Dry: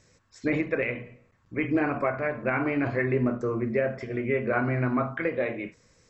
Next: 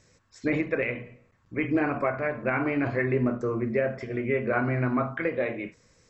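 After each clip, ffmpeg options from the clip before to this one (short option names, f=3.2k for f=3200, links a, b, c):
-af anull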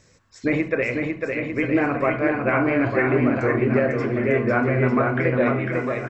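-af "aecho=1:1:500|900|1220|1476|1681:0.631|0.398|0.251|0.158|0.1,volume=4.5dB"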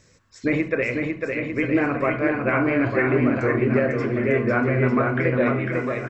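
-af "equalizer=f=770:w=2.4:g=-3.5"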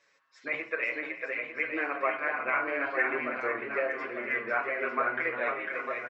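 -filter_complex "[0:a]highpass=790,lowpass=3.3k,aecho=1:1:313:0.178,asplit=2[a][b];[b]adelay=6.6,afreqshift=-1.1[c];[a][c]amix=inputs=2:normalize=1"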